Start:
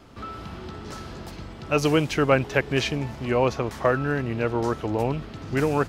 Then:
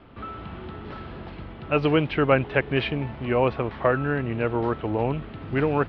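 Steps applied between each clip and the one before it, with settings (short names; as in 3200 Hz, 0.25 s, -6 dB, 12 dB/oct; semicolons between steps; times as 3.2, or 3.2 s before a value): inverse Chebyshev low-pass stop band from 6400 Hz, stop band 40 dB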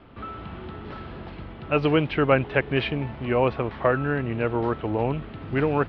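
nothing audible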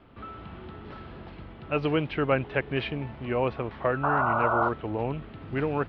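painted sound noise, 4.03–4.69, 560–1500 Hz -20 dBFS; gain -5 dB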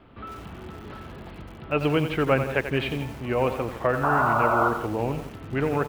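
echo 0.163 s -15 dB; lo-fi delay 89 ms, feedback 35%, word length 7-bit, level -9 dB; gain +2.5 dB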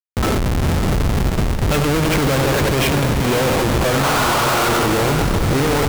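Schmitt trigger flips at -36 dBFS; diffused feedback echo 0.486 s, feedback 46%, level -8.5 dB; gain +9 dB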